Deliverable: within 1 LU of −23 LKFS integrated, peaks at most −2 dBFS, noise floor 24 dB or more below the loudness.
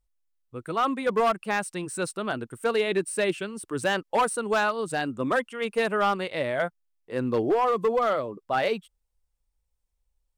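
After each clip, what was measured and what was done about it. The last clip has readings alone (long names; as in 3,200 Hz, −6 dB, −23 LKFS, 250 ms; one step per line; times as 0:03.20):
share of clipped samples 1.1%; peaks flattened at −17.5 dBFS; integrated loudness −27.0 LKFS; sample peak −17.5 dBFS; target loudness −23.0 LKFS
→ clipped peaks rebuilt −17.5 dBFS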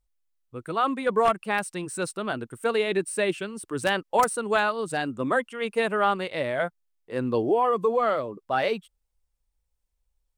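share of clipped samples 0.0%; integrated loudness −26.5 LKFS; sample peak −8.5 dBFS; target loudness −23.0 LKFS
→ level +3.5 dB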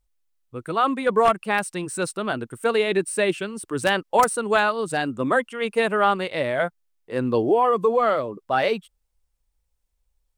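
integrated loudness −22.5 LKFS; sample peak −5.0 dBFS; background noise floor −74 dBFS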